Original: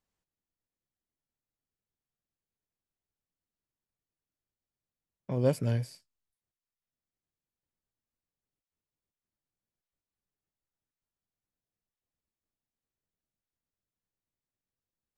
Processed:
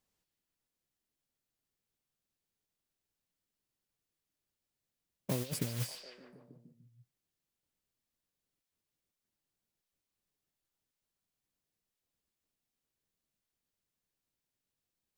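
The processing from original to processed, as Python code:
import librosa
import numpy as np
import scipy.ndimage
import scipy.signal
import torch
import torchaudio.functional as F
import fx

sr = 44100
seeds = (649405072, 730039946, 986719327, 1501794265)

y = fx.over_compress(x, sr, threshold_db=-32.0, ratio=-0.5)
y = fx.peak_eq(y, sr, hz=1200.0, db=-4.5, octaves=2.7)
y = fx.mod_noise(y, sr, seeds[0], snr_db=11)
y = fx.low_shelf(y, sr, hz=140.0, db=-7.0)
y = fx.echo_stepped(y, sr, ms=148, hz=3600.0, octaves=-0.7, feedback_pct=70, wet_db=-4)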